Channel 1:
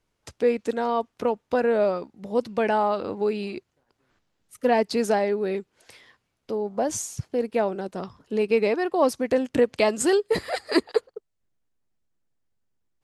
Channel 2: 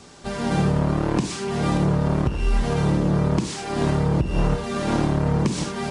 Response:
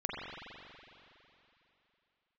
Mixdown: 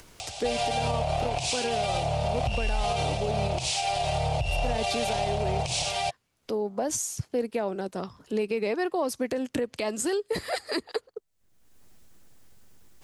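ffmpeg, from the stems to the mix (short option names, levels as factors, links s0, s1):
-filter_complex "[0:a]highshelf=f=4800:g=6.5,acrossover=split=150[s0][s1];[s1]acompressor=threshold=0.0891:ratio=6[s2];[s0][s2]amix=inputs=2:normalize=0,volume=0.891[s3];[1:a]firequalizer=gain_entry='entry(120,0);entry(220,-29);entry(700,14);entry(1000,-6);entry(1700,-7);entry(2500,11);entry(3900,9);entry(6600,6)':delay=0.05:min_phase=1,adelay=200,volume=1.12[s4];[s3][s4]amix=inputs=2:normalize=0,acompressor=mode=upward:threshold=0.0224:ratio=2.5,alimiter=limit=0.119:level=0:latency=1:release=87"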